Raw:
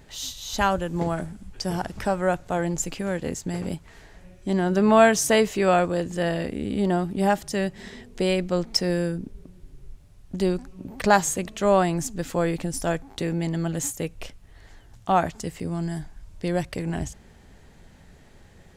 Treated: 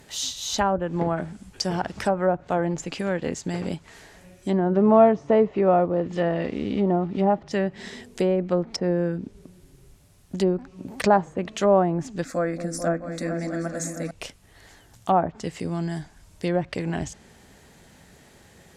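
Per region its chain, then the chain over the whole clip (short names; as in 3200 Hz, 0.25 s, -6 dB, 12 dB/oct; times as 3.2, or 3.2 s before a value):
4.75–7.51 block floating point 5-bit + LPF 5200 Hz + notch 1600 Hz, Q 9.6
12.24–14.11 fixed phaser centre 610 Hz, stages 8 + repeats that get brighter 0.219 s, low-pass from 400 Hz, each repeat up 2 oct, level -6 dB
whole clip: HPF 150 Hz 6 dB/oct; treble ducked by the level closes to 860 Hz, closed at -19.5 dBFS; high shelf 6400 Hz +8.5 dB; gain +2.5 dB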